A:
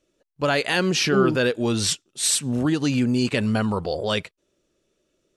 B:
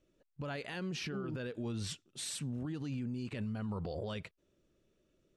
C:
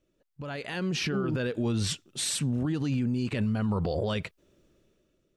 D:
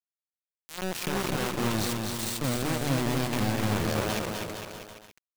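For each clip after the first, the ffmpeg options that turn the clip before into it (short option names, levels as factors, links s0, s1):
-af "bass=f=250:g=8,treble=f=4000:g=-6,acompressor=threshold=0.0631:ratio=6,alimiter=level_in=1.19:limit=0.0631:level=0:latency=1:release=65,volume=0.841,volume=0.501"
-af "dynaudnorm=f=200:g=7:m=3.35"
-filter_complex "[0:a]asplit=2[s0][s1];[s1]asoftclip=type=tanh:threshold=0.0251,volume=0.631[s2];[s0][s2]amix=inputs=2:normalize=0,acrusher=bits=3:mix=0:aa=0.000001,aecho=1:1:250|462.5|643.1|796.7|927.2:0.631|0.398|0.251|0.158|0.1,volume=0.531"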